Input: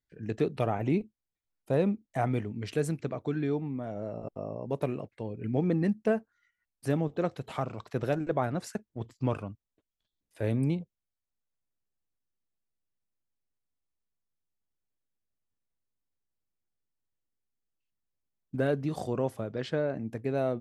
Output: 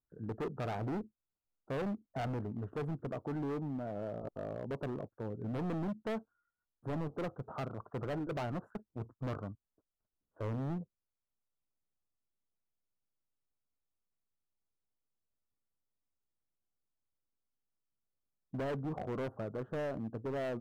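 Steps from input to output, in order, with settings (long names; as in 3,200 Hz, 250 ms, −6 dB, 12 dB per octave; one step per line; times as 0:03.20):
elliptic low-pass filter 1,400 Hz, stop band 40 dB
hard clipping −32 dBFS, distortion −6 dB
level −2 dB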